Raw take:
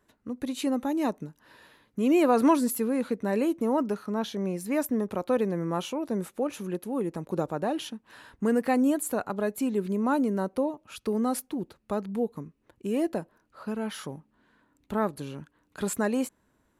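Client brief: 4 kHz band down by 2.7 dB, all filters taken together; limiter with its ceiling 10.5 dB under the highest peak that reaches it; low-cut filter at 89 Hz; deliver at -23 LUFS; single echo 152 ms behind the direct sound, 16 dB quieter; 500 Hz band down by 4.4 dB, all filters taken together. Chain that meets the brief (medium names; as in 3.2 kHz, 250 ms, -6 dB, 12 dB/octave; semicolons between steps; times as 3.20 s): high-pass 89 Hz; peaking EQ 500 Hz -5.5 dB; peaking EQ 4 kHz -3.5 dB; peak limiter -22.5 dBFS; delay 152 ms -16 dB; trim +9.5 dB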